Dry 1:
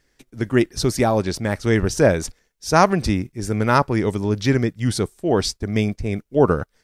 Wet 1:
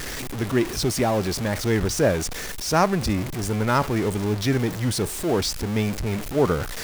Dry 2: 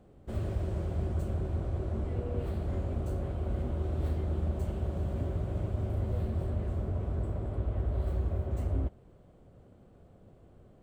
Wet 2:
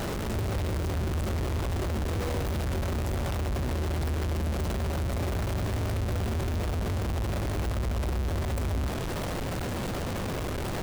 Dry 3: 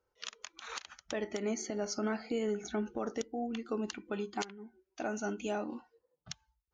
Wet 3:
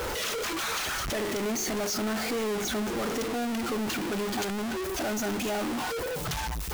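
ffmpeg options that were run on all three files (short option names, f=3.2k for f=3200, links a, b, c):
-af "aeval=exprs='val(0)+0.5*0.106*sgn(val(0))':c=same,volume=-6dB"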